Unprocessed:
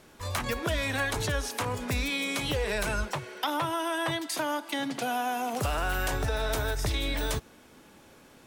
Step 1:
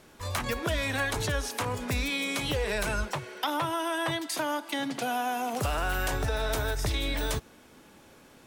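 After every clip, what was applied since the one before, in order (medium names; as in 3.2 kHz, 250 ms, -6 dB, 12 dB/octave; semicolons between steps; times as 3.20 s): no audible change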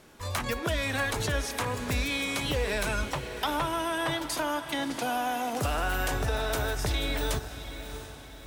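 echo that smears into a reverb 672 ms, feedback 45%, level -11 dB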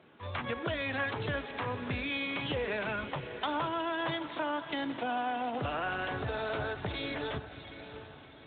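trim -3.5 dB; Speex 18 kbps 8 kHz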